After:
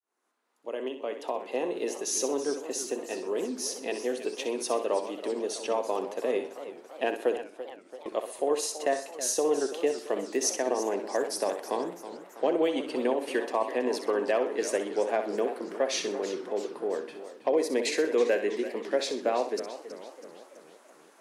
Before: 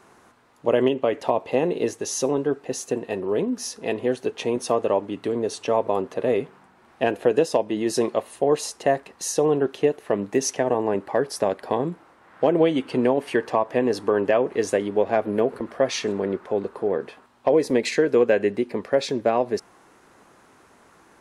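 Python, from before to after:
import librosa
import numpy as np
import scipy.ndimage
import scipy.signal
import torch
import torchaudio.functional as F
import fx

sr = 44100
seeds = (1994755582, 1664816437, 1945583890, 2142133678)

p1 = fx.fade_in_head(x, sr, length_s=1.99)
p2 = scipy.signal.sosfilt(scipy.signal.butter(4, 260.0, 'highpass', fs=sr, output='sos'), p1)
p3 = fx.high_shelf(p2, sr, hz=3900.0, db=7.5)
p4 = fx.gate_flip(p3, sr, shuts_db=-22.0, range_db=-34, at=(7.33, 8.06))
p5 = p4 + fx.room_flutter(p4, sr, wall_m=10.8, rt60_s=0.4, dry=0)
p6 = fx.echo_warbled(p5, sr, ms=330, feedback_pct=57, rate_hz=2.8, cents=185, wet_db=-13.0)
y = F.gain(torch.from_numpy(p6), -7.0).numpy()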